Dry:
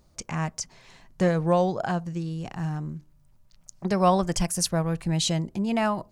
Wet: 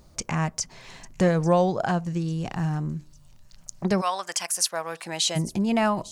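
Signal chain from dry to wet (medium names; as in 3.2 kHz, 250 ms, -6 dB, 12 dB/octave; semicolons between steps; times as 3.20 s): 4.00–5.35 s: high-pass 1.3 kHz -> 510 Hz 12 dB/octave; in parallel at +2 dB: compression, threshold -36 dBFS, peak gain reduction 17 dB; on the sum: feedback echo behind a high-pass 849 ms, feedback 43%, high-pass 5.2 kHz, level -15.5 dB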